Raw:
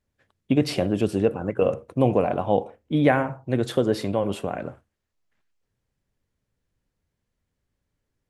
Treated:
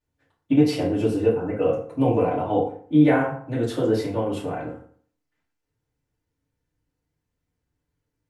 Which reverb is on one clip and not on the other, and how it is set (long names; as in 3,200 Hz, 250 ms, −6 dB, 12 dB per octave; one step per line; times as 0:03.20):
feedback delay network reverb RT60 0.52 s, low-frequency decay 1.05×, high-frequency decay 0.65×, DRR −8 dB
level −9.5 dB